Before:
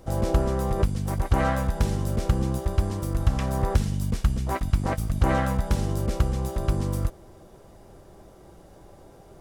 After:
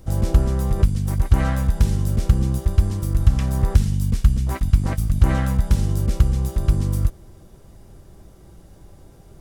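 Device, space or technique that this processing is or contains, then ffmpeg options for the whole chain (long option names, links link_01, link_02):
smiley-face EQ: -af "lowshelf=frequency=200:gain=6.5,equalizer=frequency=650:width_type=o:width=2.1:gain=-7,highshelf=frequency=8300:gain=3.5,volume=1.5dB"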